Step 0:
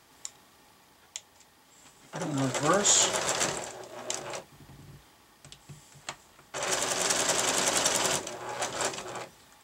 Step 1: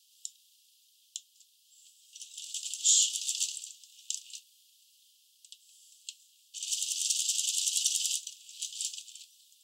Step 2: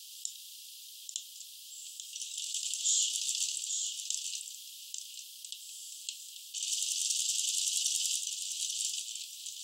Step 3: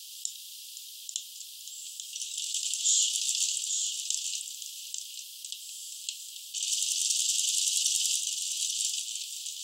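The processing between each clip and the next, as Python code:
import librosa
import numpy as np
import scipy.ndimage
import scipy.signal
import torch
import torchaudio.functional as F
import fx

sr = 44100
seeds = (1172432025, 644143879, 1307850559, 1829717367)

y1 = scipy.signal.sosfilt(scipy.signal.butter(16, 2800.0, 'highpass', fs=sr, output='sos'), x)
y1 = F.gain(torch.from_numpy(y1), -1.0).numpy()
y2 = y1 + 10.0 ** (-12.5 / 20.0) * np.pad(y1, (int(839 * sr / 1000.0), 0))[:len(y1)]
y2 = fx.env_flatten(y2, sr, amount_pct=50)
y2 = F.gain(torch.from_numpy(y2), -6.0).numpy()
y3 = y2 + 10.0 ** (-12.0 / 20.0) * np.pad(y2, (int(517 * sr / 1000.0), 0))[:len(y2)]
y3 = F.gain(torch.from_numpy(y3), 4.0).numpy()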